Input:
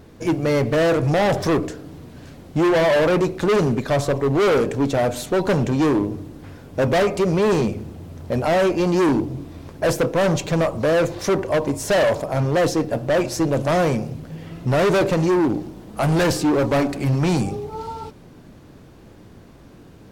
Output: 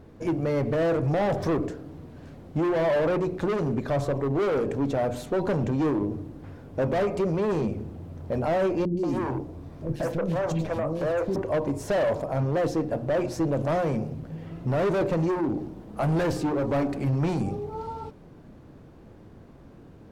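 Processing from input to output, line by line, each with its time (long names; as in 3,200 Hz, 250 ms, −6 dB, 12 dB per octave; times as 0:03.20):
0:08.85–0:11.36: three-band delay without the direct sound lows, highs, mids 120/180 ms, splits 360/3,000 Hz
whole clip: high-shelf EQ 2,100 Hz −11.5 dB; mains-hum notches 60/120/180/240/300/360/420 Hz; brickwall limiter −17 dBFS; level −2.5 dB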